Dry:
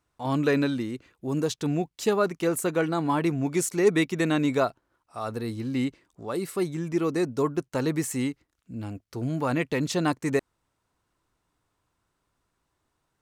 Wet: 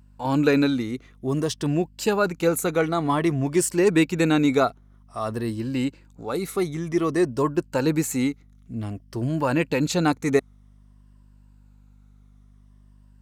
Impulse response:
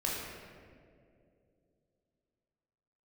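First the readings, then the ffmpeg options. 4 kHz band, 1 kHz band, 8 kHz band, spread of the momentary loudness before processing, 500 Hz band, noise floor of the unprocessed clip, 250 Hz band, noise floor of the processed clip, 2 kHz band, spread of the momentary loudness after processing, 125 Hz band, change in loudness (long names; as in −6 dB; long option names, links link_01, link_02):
+3.5 dB, +3.5 dB, +3.5 dB, 11 LU, +3.0 dB, −78 dBFS, +4.0 dB, −53 dBFS, +3.5 dB, 12 LU, +3.5 dB, +3.5 dB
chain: -af "afftfilt=real='re*pow(10,7/40*sin(2*PI*(1.3*log(max(b,1)*sr/1024/100)/log(2)-(-0.53)*(pts-256)/sr)))':imag='im*pow(10,7/40*sin(2*PI*(1.3*log(max(b,1)*sr/1024/100)/log(2)-(-0.53)*(pts-256)/sr)))':win_size=1024:overlap=0.75,aeval=exprs='val(0)+0.002*(sin(2*PI*50*n/s)+sin(2*PI*2*50*n/s)/2+sin(2*PI*3*50*n/s)/3+sin(2*PI*4*50*n/s)/4+sin(2*PI*5*50*n/s)/5)':channel_layout=same,volume=3dB"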